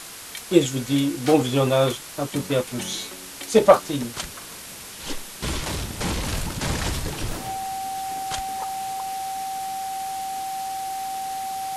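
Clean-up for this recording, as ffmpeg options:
ffmpeg -i in.wav -af "bandreject=frequency=770:width=30,afwtdn=0.014" out.wav

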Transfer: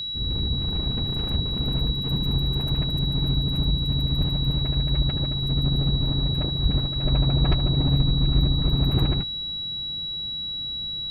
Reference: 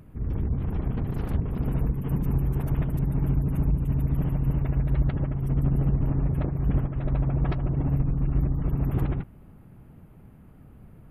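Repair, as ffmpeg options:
ffmpeg -i in.wav -filter_complex "[0:a]bandreject=frequency=3900:width=30,asplit=3[link_01][link_02][link_03];[link_01]afade=type=out:start_time=4.19:duration=0.02[link_04];[link_02]highpass=frequency=140:width=0.5412,highpass=frequency=140:width=1.3066,afade=type=in:start_time=4.19:duration=0.02,afade=type=out:start_time=4.31:duration=0.02[link_05];[link_03]afade=type=in:start_time=4.31:duration=0.02[link_06];[link_04][link_05][link_06]amix=inputs=3:normalize=0,asplit=3[link_07][link_08][link_09];[link_07]afade=type=out:start_time=6.62:duration=0.02[link_10];[link_08]highpass=frequency=140:width=0.5412,highpass=frequency=140:width=1.3066,afade=type=in:start_time=6.62:duration=0.02,afade=type=out:start_time=6.74:duration=0.02[link_11];[link_09]afade=type=in:start_time=6.74:duration=0.02[link_12];[link_10][link_11][link_12]amix=inputs=3:normalize=0,asplit=3[link_13][link_14][link_15];[link_13]afade=type=out:start_time=7.49:duration=0.02[link_16];[link_14]highpass=frequency=140:width=0.5412,highpass=frequency=140:width=1.3066,afade=type=in:start_time=7.49:duration=0.02,afade=type=out:start_time=7.61:duration=0.02[link_17];[link_15]afade=type=in:start_time=7.61:duration=0.02[link_18];[link_16][link_17][link_18]amix=inputs=3:normalize=0,asetnsamples=nb_out_samples=441:pad=0,asendcmd='7.03 volume volume -3.5dB',volume=0dB" out.wav

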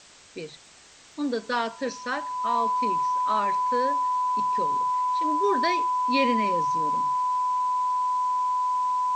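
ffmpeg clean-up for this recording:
ffmpeg -i in.wav -af "adeclick=threshold=4,bandreject=frequency=1000:width=30,afwtdn=0.004" out.wav

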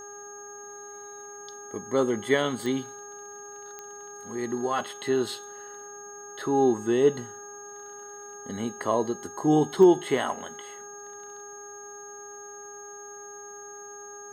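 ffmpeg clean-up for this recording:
ffmpeg -i in.wav -af "adeclick=threshold=4,bandreject=frequency=408.8:width_type=h:width=4,bandreject=frequency=817.6:width_type=h:width=4,bandreject=frequency=1226.4:width_type=h:width=4,bandreject=frequency=1635.2:width_type=h:width=4,bandreject=frequency=6500:width=30" out.wav

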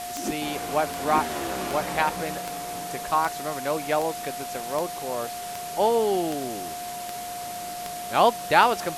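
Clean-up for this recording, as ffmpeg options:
ffmpeg -i in.wav -af "adeclick=threshold=4,bandreject=frequency=710:width=30,afwtdn=0.013" out.wav

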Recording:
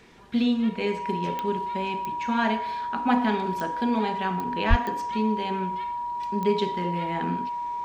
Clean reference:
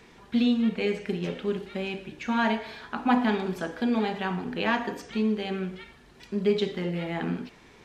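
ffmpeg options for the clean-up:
ffmpeg -i in.wav -filter_complex "[0:a]adeclick=threshold=4,bandreject=frequency=960:width=30,asplit=3[link_01][link_02][link_03];[link_01]afade=type=out:start_time=4.69:duration=0.02[link_04];[link_02]highpass=frequency=140:width=0.5412,highpass=frequency=140:width=1.3066,afade=type=in:start_time=4.69:duration=0.02,afade=type=out:start_time=4.81:duration=0.02[link_05];[link_03]afade=type=in:start_time=4.81:duration=0.02[link_06];[link_04][link_05][link_06]amix=inputs=3:normalize=0" out.wav

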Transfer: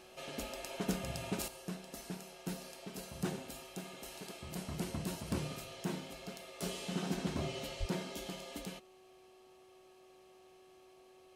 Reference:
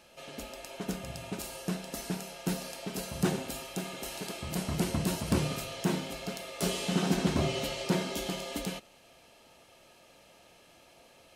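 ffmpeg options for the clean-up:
ffmpeg -i in.wav -filter_complex "[0:a]bandreject=frequency=373.5:width_type=h:width=4,bandreject=frequency=747:width_type=h:width=4,bandreject=frequency=1120.5:width_type=h:width=4,asplit=3[link_01][link_02][link_03];[link_01]afade=type=out:start_time=7.79:duration=0.02[link_04];[link_02]highpass=frequency=140:width=0.5412,highpass=frequency=140:width=1.3066,afade=type=in:start_time=7.79:duration=0.02,afade=type=out:start_time=7.91:duration=0.02[link_05];[link_03]afade=type=in:start_time=7.91:duration=0.02[link_06];[link_04][link_05][link_06]amix=inputs=3:normalize=0,asetnsamples=nb_out_samples=441:pad=0,asendcmd='1.48 volume volume 9dB',volume=0dB" out.wav

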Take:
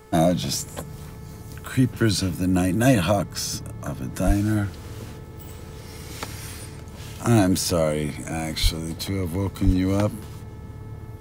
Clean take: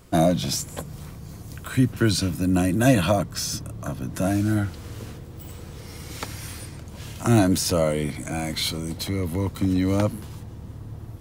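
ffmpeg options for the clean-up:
ffmpeg -i in.wav -filter_complex "[0:a]bandreject=frequency=434.3:width_type=h:width=4,bandreject=frequency=868.6:width_type=h:width=4,bandreject=frequency=1302.9:width_type=h:width=4,bandreject=frequency=1737.2:width_type=h:width=4,bandreject=frequency=2171.5:width_type=h:width=4,asplit=3[link_01][link_02][link_03];[link_01]afade=type=out:start_time=4.26:duration=0.02[link_04];[link_02]highpass=frequency=140:width=0.5412,highpass=frequency=140:width=1.3066,afade=type=in:start_time=4.26:duration=0.02,afade=type=out:start_time=4.38:duration=0.02[link_05];[link_03]afade=type=in:start_time=4.38:duration=0.02[link_06];[link_04][link_05][link_06]amix=inputs=3:normalize=0,asplit=3[link_07][link_08][link_09];[link_07]afade=type=out:start_time=8.62:duration=0.02[link_10];[link_08]highpass=frequency=140:width=0.5412,highpass=frequency=140:width=1.3066,afade=type=in:start_time=8.62:duration=0.02,afade=type=out:start_time=8.74:duration=0.02[link_11];[link_09]afade=type=in:start_time=8.74:duration=0.02[link_12];[link_10][link_11][link_12]amix=inputs=3:normalize=0,asplit=3[link_13][link_14][link_15];[link_13]afade=type=out:start_time=9.65:duration=0.02[link_16];[link_14]highpass=frequency=140:width=0.5412,highpass=frequency=140:width=1.3066,afade=type=in:start_time=9.65:duration=0.02,afade=type=out:start_time=9.77:duration=0.02[link_17];[link_15]afade=type=in:start_time=9.77:duration=0.02[link_18];[link_16][link_17][link_18]amix=inputs=3:normalize=0" out.wav

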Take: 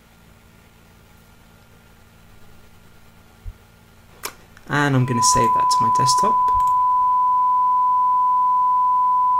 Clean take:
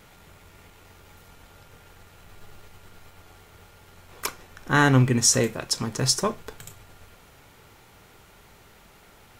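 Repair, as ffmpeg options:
ffmpeg -i in.wav -filter_complex "[0:a]bandreject=frequency=56.4:width_type=h:width=4,bandreject=frequency=112.8:width_type=h:width=4,bandreject=frequency=169.2:width_type=h:width=4,bandreject=frequency=225.6:width_type=h:width=4,bandreject=frequency=1000:width=30,asplit=3[link_01][link_02][link_03];[link_01]afade=type=out:start_time=3.44:duration=0.02[link_04];[link_02]highpass=frequency=140:width=0.5412,highpass=frequency=140:width=1.3066,afade=type=in:start_time=3.44:duration=0.02,afade=type=out:start_time=3.56:duration=0.02[link_05];[link_03]afade=type=in:start_time=3.56:duration=0.02[link_06];[link_04][link_05][link_06]amix=inputs=3:normalize=0,asplit=3[link_07][link_08][link_09];[link_07]afade=type=out:start_time=5.33:duration=0.02[link_10];[link_08]highpass=frequency=140:width=0.5412,highpass=frequency=140:width=1.3066,afade=type=in:start_time=5.33:duration=0.02,afade=type=out:start_time=5.45:duration=0.02[link_11];[link_09]afade=type=in:start_time=5.45:duration=0.02[link_12];[link_10][link_11][link_12]amix=inputs=3:normalize=0,asplit=3[link_13][link_14][link_15];[link_13]afade=type=out:start_time=6.53:duration=0.02[link_16];[link_14]highpass=frequency=140:width=0.5412,highpass=frequency=140:width=1.3066,afade=type=in:start_time=6.53:duration=0.02,afade=type=out:start_time=6.65:duration=0.02[link_17];[link_15]afade=type=in:start_time=6.65:duration=0.02[link_18];[link_16][link_17][link_18]amix=inputs=3:normalize=0" out.wav

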